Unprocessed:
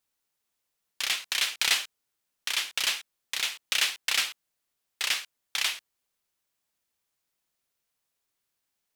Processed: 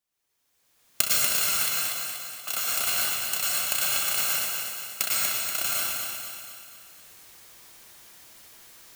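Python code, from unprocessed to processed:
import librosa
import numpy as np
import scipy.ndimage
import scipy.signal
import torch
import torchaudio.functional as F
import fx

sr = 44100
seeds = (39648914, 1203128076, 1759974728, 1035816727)

p1 = fx.bit_reversed(x, sr, seeds[0], block=128)
p2 = fx.recorder_agc(p1, sr, target_db=-11.0, rise_db_per_s=24.0, max_gain_db=30)
p3 = fx.vowel_filter(p2, sr, vowel='a', at=(1.69, 2.48))
p4 = p3 + fx.echo_feedback(p3, sr, ms=240, feedback_pct=53, wet_db=-5.5, dry=0)
p5 = fx.rev_plate(p4, sr, seeds[1], rt60_s=1.2, hf_ratio=0.95, predelay_ms=95, drr_db=-3.5)
y = F.gain(torch.from_numpy(p5), -5.5).numpy()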